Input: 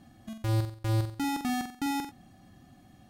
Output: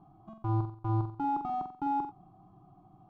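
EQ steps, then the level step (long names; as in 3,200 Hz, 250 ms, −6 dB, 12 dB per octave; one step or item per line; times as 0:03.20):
low-pass with resonance 1,100 Hz, resonance Q 2.1
phaser with its sweep stopped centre 360 Hz, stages 8
0.0 dB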